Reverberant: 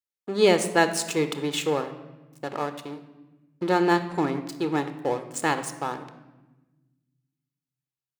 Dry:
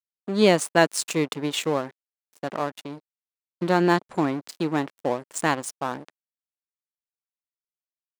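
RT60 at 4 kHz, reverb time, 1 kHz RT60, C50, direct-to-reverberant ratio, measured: 0.85 s, 1.1 s, 1.0 s, 11.5 dB, 10.0 dB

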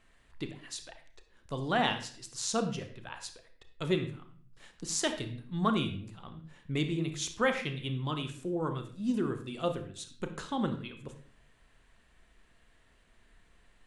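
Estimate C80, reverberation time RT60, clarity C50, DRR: 13.0 dB, 0.50 s, 9.5 dB, 7.0 dB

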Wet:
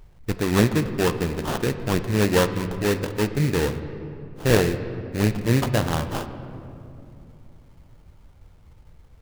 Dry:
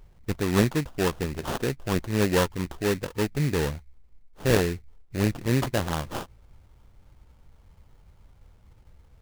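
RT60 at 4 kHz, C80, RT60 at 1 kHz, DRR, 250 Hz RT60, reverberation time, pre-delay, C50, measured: 1.5 s, 11.5 dB, 2.5 s, 9.0 dB, 4.0 s, 2.9 s, 7 ms, 10.5 dB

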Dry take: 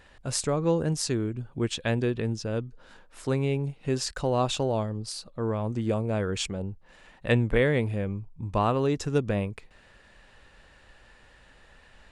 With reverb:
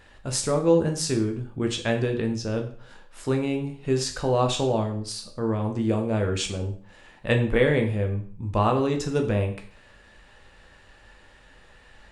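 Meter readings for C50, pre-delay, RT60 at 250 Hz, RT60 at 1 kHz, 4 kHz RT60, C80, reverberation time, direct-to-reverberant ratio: 9.5 dB, 5 ms, 0.45 s, 0.45 s, 0.45 s, 13.5 dB, 0.45 s, 3.5 dB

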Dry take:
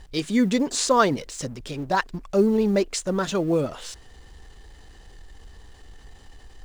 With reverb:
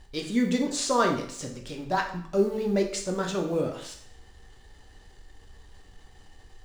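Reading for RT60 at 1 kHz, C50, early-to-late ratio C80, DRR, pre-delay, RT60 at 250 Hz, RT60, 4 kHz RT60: 0.60 s, 8.0 dB, 11.5 dB, 2.0 dB, 4 ms, 0.60 s, 0.60 s, 0.60 s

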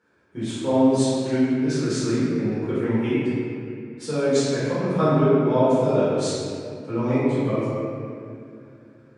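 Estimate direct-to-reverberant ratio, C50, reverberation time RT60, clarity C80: -13.0 dB, -4.5 dB, 2.5 s, -2.0 dB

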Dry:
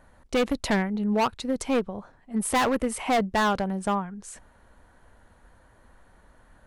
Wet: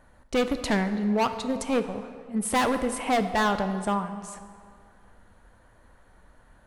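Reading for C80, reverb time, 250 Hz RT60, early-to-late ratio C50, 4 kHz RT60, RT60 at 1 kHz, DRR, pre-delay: 11.0 dB, 2.0 s, 2.1 s, 10.0 dB, 1.4 s, 2.1 s, 8.5 dB, 6 ms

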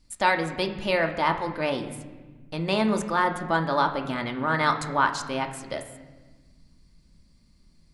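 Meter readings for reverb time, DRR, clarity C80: 1.3 s, 4.0 dB, 12.0 dB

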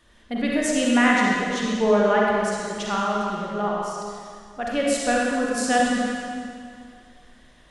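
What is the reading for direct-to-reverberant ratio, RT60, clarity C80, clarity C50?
-4.0 dB, 2.2 s, -0.5 dB, -2.5 dB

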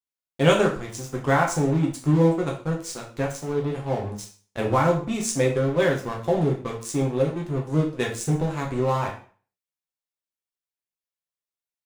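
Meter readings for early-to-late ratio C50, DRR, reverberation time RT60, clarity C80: 8.5 dB, -1.5 dB, 0.45 s, 12.5 dB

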